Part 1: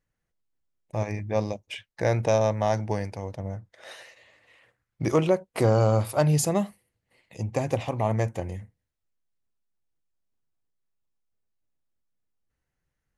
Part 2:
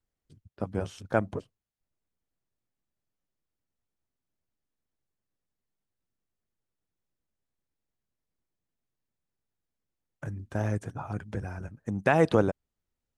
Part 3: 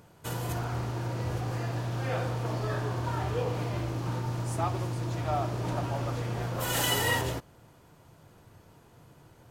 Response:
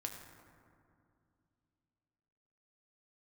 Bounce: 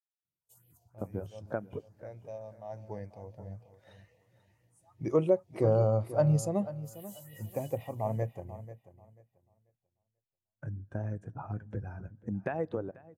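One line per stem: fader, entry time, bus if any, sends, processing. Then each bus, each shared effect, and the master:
2.58 s -17.5 dB -> 3.03 s -6 dB, 0.00 s, no send, echo send -10 dB, none
0.0 dB, 0.40 s, send -14.5 dB, echo send -13.5 dB, compression 8:1, threshold -29 dBFS, peak gain reduction 13 dB
-3.5 dB, 0.25 s, send -16.5 dB, echo send -8 dB, pre-emphasis filter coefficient 0.8; phase shifter stages 4, 3 Hz, lowest notch 220–1200 Hz; auto duck -8 dB, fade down 0.60 s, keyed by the first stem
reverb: on, RT60 2.4 s, pre-delay 5 ms
echo: feedback delay 489 ms, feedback 36%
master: bass shelf 140 Hz -4.5 dB; spectral contrast expander 1.5:1

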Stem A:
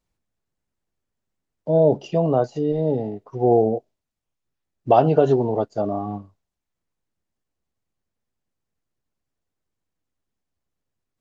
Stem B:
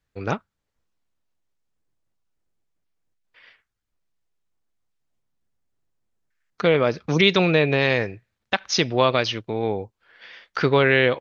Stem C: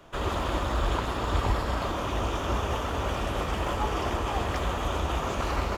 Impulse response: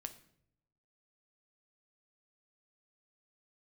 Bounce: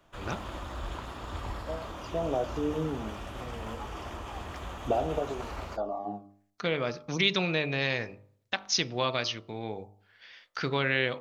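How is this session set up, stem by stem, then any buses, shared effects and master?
-2.5 dB, 0.00 s, no send, compression, threshold -19 dBFS, peak gain reduction 9.5 dB; cancelling through-zero flanger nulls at 0.27 Hz, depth 2.9 ms; auto duck -13 dB, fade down 0.55 s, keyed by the second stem
-11.0 dB, 0.00 s, send -13 dB, treble shelf 4.6 kHz +11.5 dB
-10.0 dB, 0.00 s, no send, none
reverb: on, RT60 0.70 s, pre-delay 7 ms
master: peaking EQ 440 Hz -3.5 dB 0.47 oct; de-hum 50.28 Hz, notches 27

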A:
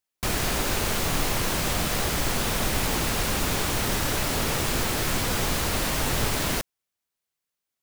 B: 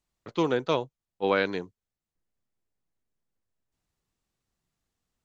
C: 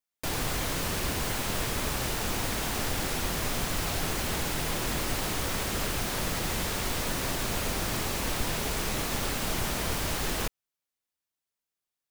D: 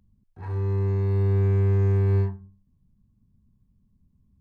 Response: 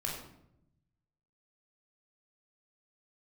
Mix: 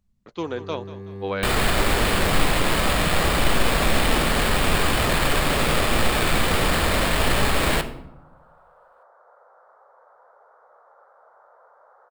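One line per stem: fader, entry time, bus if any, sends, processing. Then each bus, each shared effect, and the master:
+2.5 dB, 1.20 s, send -8.5 dB, no echo send, sample-rate reducer 6 kHz, jitter 0%
-3.5 dB, 0.00 s, no send, echo send -15 dB, none
-15.5 dB, 1.75 s, no send, no echo send, elliptic band-pass 510–1400 Hz, stop band 40 dB
-10.5 dB, 0.00 s, send -4 dB, no echo send, none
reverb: on, RT60 0.80 s, pre-delay 17 ms
echo: feedback delay 188 ms, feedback 44%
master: peaking EQ 110 Hz -8 dB 0.44 oct

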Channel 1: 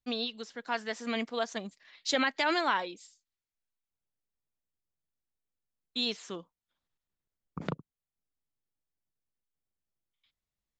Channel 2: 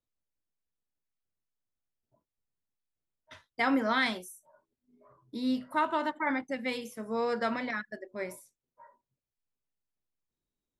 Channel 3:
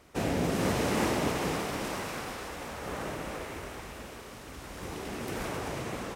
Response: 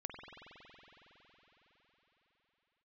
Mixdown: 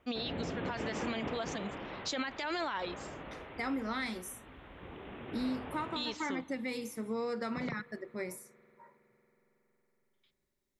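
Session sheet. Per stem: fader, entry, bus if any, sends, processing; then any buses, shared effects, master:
-0.5 dB, 0.00 s, send -21.5 dB, none
+2.0 dB, 0.00 s, send -18 dB, graphic EQ with 31 bands 630 Hz -10 dB, 1 kHz -6 dB, 1.6 kHz -7 dB, 3.15 kHz -10 dB; compression, threshold -35 dBFS, peak gain reduction 11 dB
-10.5 dB, 0.00 s, send -9 dB, steep low-pass 3.6 kHz 96 dB/octave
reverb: on, RT60 4.9 s, pre-delay 46 ms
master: peak limiter -26.5 dBFS, peak gain reduction 11.5 dB

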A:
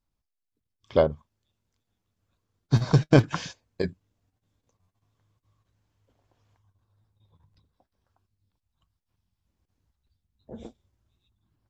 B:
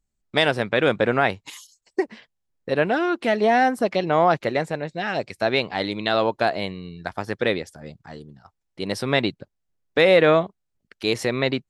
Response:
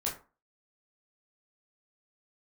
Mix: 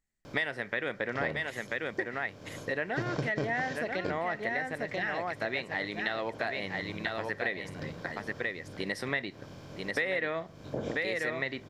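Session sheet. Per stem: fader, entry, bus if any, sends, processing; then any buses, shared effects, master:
-4.5 dB, 0.25 s, no send, no echo send, spectral levelling over time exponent 0.4
-5.0 dB, 0.00 s, send -18 dB, echo send -5 dB, peaking EQ 1.9 kHz +15 dB 0.33 oct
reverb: on, RT60 0.35 s, pre-delay 13 ms
echo: delay 988 ms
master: bass shelf 120 Hz -6 dB; compression 4:1, threshold -31 dBFS, peak gain reduction 16.5 dB

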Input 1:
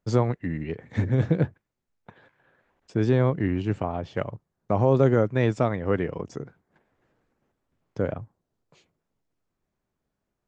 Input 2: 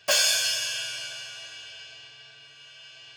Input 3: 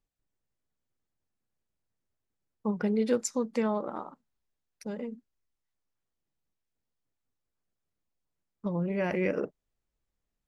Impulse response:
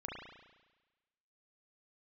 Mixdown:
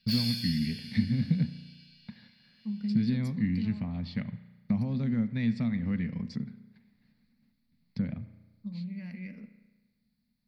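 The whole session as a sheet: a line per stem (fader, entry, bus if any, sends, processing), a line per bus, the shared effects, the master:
-1.5 dB, 0.00 s, send -10 dB, compression 2:1, threshold -33 dBFS, peak gain reduction 10.5 dB
-17.5 dB, 0.00 s, no send, none
-17.0 dB, 0.00 s, send -7 dB, none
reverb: on, RT60 1.2 s, pre-delay 34 ms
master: FFT filter 120 Hz 0 dB, 230 Hz +13 dB, 330 Hz -17 dB, 790 Hz -14 dB, 1.4 kHz -12 dB, 2.1 kHz +4 dB, 3.1 kHz -4 dB, 4.4 kHz +15 dB, 6.6 kHz -16 dB, 11 kHz +4 dB

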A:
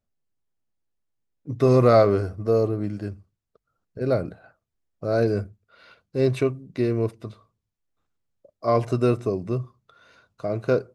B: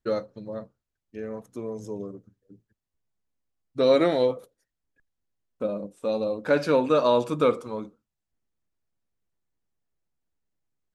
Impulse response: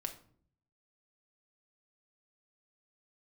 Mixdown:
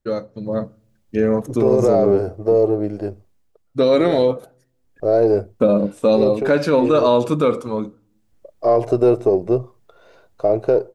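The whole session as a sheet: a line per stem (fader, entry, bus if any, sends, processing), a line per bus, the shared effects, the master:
-13.5 dB, 0.00 s, no send, partial rectifier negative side -3 dB; high-order bell 540 Hz +12 dB; peak limiter -7 dBFS, peak gain reduction 9.5 dB
0.0 dB, 0.00 s, send -19 dB, de-esser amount 65%; bass shelf 370 Hz +5 dB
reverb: on, RT60 0.55 s, pre-delay 5 ms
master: level rider gain up to 15 dB; peak limiter -6.5 dBFS, peak gain reduction 5.5 dB

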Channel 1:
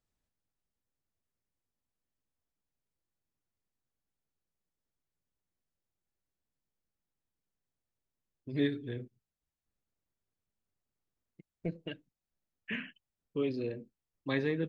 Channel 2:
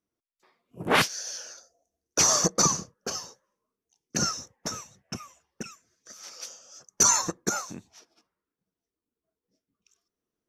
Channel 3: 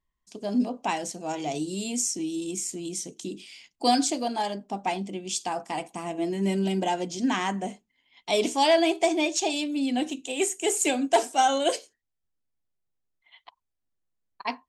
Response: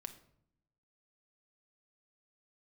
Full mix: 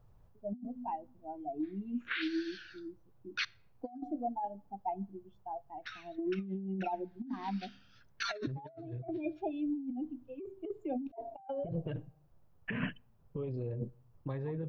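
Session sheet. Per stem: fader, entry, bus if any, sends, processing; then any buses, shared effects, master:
+1.5 dB, 0.00 s, bus A, send -23.5 dB, graphic EQ 125/250/500/1000/2000/4000/8000 Hz +11/-7/+4/+7/-6/-5/-10 dB; compressor with a negative ratio -36 dBFS, ratio -1
-7.5 dB, 1.20 s, muted 3.45–5.82 s, bus A, send -13 dB, elliptic band-pass 1.5–4 kHz, stop band 40 dB
+2.0 dB, 0.00 s, no bus, send -14 dB, low-pass 2.9 kHz 12 dB/octave; spectral contrast expander 2.5:1
bus A: 0.0 dB, tilt EQ -2 dB/octave; peak limiter -27.5 dBFS, peak gain reduction 10.5 dB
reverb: on, RT60 0.70 s, pre-delay 5 ms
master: compressor with a negative ratio -40 dBFS, ratio -1

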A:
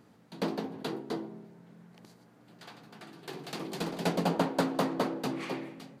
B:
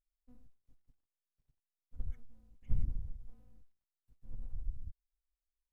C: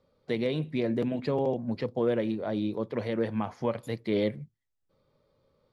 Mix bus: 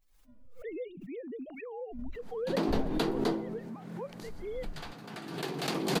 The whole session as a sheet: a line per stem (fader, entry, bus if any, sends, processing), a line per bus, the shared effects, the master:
-5.0 dB, 2.15 s, no send, level rider gain up to 10 dB
+0.5 dB, 0.00 s, no send, frequency axis rescaled in octaves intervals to 127%
-12.5 dB, 0.35 s, no send, formants replaced by sine waves; reverb removal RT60 0.99 s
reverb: none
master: swell ahead of each attack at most 50 dB/s

